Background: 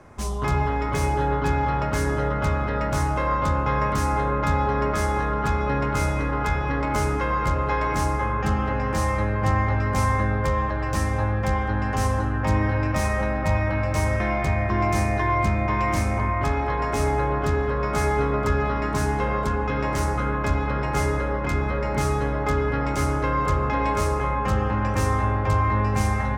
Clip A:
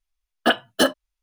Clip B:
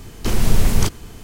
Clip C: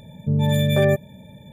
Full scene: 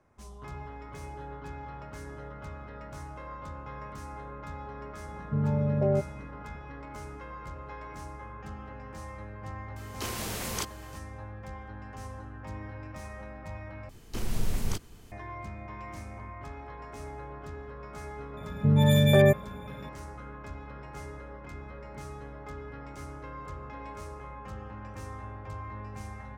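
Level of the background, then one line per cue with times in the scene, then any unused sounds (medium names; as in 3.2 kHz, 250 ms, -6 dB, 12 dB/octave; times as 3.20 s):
background -19 dB
5.05 s: add C -7 dB + elliptic low-pass 840 Hz
9.76 s: add B -7.5 dB + high-pass 620 Hz 6 dB/octave
13.89 s: replace with B -14 dB
18.37 s: add C -1.5 dB
not used: A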